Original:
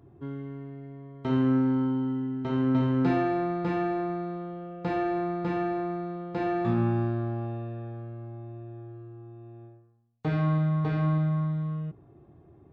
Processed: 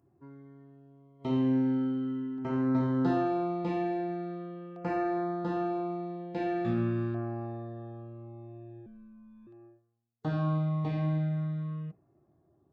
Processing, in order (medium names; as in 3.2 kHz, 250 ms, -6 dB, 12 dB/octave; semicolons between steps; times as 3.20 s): spectral noise reduction 10 dB; LFO notch saw down 0.42 Hz 700–3900 Hz; 8.86–9.47 s: frequency shift -130 Hz; bass shelf 94 Hz -9.5 dB; band-stop 440 Hz, Q 13; trim -1.5 dB